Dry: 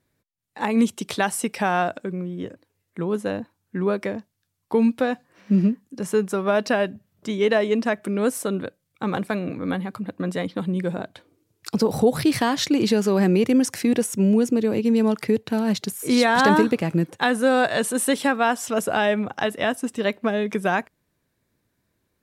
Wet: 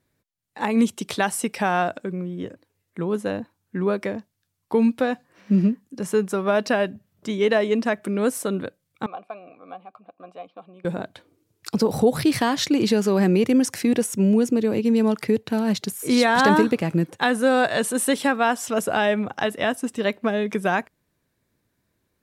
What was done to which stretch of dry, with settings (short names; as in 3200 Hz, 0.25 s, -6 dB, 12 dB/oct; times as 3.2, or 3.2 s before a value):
9.06–10.85 vowel filter a